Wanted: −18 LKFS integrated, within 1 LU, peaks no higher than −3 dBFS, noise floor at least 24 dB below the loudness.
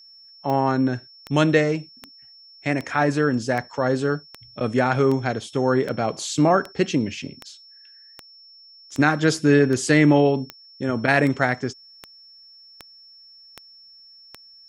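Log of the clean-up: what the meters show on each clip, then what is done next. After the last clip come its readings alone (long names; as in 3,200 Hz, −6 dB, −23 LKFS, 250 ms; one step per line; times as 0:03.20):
number of clicks 19; interfering tone 5,400 Hz; level of the tone −46 dBFS; integrated loudness −21.5 LKFS; sample peak −3.0 dBFS; target loudness −18.0 LKFS
→ click removal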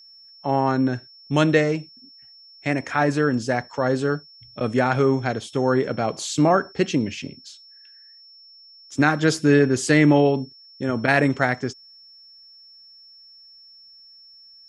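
number of clicks 0; interfering tone 5,400 Hz; level of the tone −46 dBFS
→ notch filter 5,400 Hz, Q 30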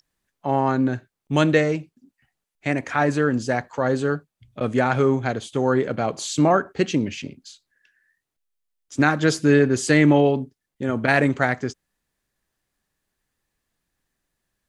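interfering tone none found; integrated loudness −21.5 LKFS; sample peak −3.0 dBFS; target loudness −18.0 LKFS
→ level +3.5 dB
brickwall limiter −3 dBFS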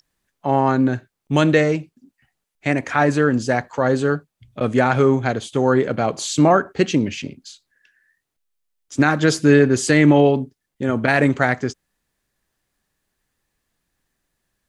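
integrated loudness −18.5 LKFS; sample peak −3.0 dBFS; background noise floor −80 dBFS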